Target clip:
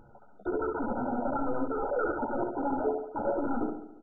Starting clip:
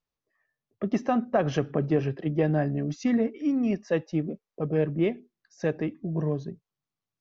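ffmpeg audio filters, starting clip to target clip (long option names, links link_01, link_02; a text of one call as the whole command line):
ffmpeg -i in.wav -filter_complex "[0:a]bandreject=frequency=620:width=16,asplit=2[link_01][link_02];[link_02]aeval=exprs='0.266*sin(PI/2*7.08*val(0)/0.266)':channel_layout=same,volume=-7dB[link_03];[link_01][link_03]amix=inputs=2:normalize=0,flanger=delay=15:depth=5.1:speed=0.49,areverse,acompressor=threshold=-30dB:ratio=12,areverse,lowpass=frequency=1200:width=0.5412,lowpass=frequency=1200:width=1.3066,aecho=1:1:124|248|372|496|620|744|868:0.562|0.292|0.152|0.0791|0.0411|0.0214|0.0111,asetrate=78939,aresample=44100,asplit=2[link_04][link_05];[link_05]adelay=14,volume=-8dB[link_06];[link_04][link_06]amix=inputs=2:normalize=0,acompressor=mode=upward:threshold=-39dB:ratio=2.5,volume=1.5dB" -ar 16000 -c:a mp2 -b:a 8k out.mp2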